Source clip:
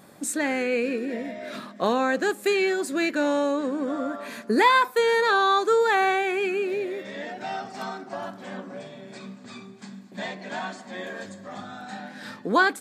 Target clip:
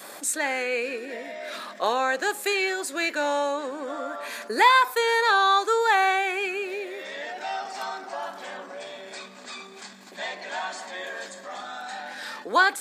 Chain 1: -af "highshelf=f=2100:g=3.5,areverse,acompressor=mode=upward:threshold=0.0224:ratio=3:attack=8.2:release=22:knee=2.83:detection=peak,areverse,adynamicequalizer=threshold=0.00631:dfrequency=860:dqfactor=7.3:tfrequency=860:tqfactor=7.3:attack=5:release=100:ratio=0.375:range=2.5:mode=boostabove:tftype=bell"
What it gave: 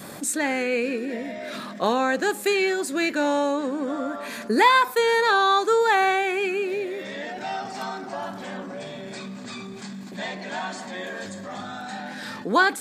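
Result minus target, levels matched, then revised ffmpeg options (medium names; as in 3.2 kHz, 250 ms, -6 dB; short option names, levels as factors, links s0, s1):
500 Hz band +2.5 dB
-af "highshelf=f=2100:g=3.5,areverse,acompressor=mode=upward:threshold=0.0224:ratio=3:attack=8.2:release=22:knee=2.83:detection=peak,areverse,adynamicequalizer=threshold=0.00631:dfrequency=860:dqfactor=7.3:tfrequency=860:tqfactor=7.3:attack=5:release=100:ratio=0.375:range=2.5:mode=boostabove:tftype=bell,highpass=510"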